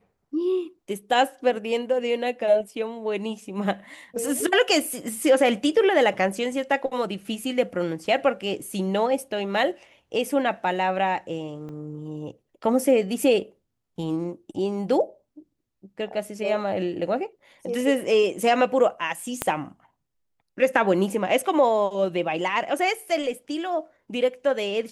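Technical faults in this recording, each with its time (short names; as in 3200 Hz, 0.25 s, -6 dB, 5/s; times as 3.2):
11.69 gap 2.2 ms
19.42 pop -8 dBFS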